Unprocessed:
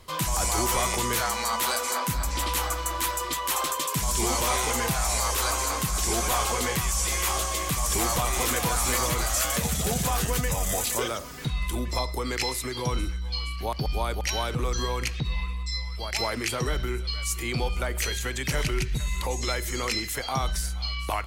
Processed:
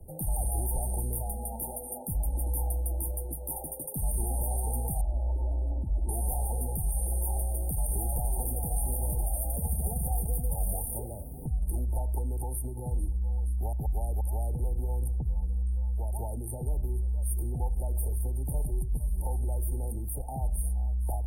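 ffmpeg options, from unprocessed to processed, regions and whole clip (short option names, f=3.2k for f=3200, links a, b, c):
-filter_complex "[0:a]asettb=1/sr,asplit=3[a][b][c];[a]atrim=end=5.014[d];[b]atrim=start=5.01:end=6.09,asetpts=PTS-STARTPTS,afade=t=in:d=0.004:c=qsin,afade=t=out:st=1.076:d=0.004:c=qsin,lowpass=1.5k,equalizer=f=1k:w=0.51:g=-9.5,aecho=1:1:3.3:0.72,atrim=end_sample=47628[e];[c]atrim=start=6.086[f];[d][e]acrossfade=d=0.004:c1=hsin:c2=qsin[g];[g][f]acrossfade=d=0.004:c1=qsin:c2=hsin,lowshelf=f=160:g=12,afftfilt=real='re*(1-between(b*sr/4096,910,8600))':imag='im*(1-between(b*sr/4096,910,8600))':win_size=4096:overlap=0.75,acrossover=split=84|230|900[h][i][j][k];[h]acompressor=threshold=-25dB:ratio=4[l];[i]acompressor=threshold=-40dB:ratio=4[m];[j]acompressor=threshold=-44dB:ratio=4[n];[k]acompressor=threshold=-29dB:ratio=4[o];[l][m][n][o]amix=inputs=4:normalize=0,volume=-3dB"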